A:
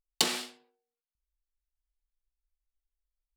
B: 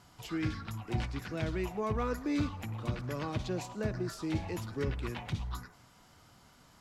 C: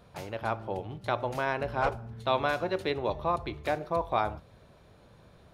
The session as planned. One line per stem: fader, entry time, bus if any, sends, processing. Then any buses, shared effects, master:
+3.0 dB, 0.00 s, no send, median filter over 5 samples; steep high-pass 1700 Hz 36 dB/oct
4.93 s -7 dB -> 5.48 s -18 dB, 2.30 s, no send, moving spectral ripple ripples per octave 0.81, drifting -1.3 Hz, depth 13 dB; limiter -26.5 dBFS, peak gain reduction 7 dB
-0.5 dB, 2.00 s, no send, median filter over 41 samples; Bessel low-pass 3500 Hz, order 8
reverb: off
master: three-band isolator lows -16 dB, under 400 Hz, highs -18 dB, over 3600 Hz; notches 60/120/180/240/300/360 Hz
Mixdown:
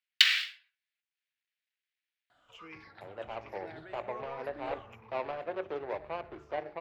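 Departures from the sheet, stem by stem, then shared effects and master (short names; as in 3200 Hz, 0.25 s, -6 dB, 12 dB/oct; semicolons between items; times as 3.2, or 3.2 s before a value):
stem A +3.0 dB -> +13.0 dB; stem C: entry 2.00 s -> 2.85 s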